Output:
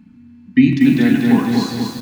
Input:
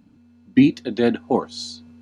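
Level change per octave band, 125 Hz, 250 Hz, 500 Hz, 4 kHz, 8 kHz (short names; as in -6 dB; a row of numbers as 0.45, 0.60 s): +9.5 dB, +7.0 dB, -2.5 dB, +3.5 dB, n/a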